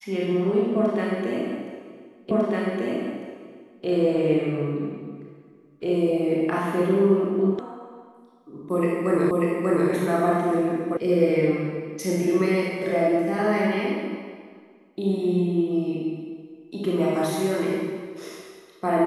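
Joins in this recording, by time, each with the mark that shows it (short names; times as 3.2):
2.31 repeat of the last 1.55 s
7.59 sound cut off
9.31 repeat of the last 0.59 s
10.97 sound cut off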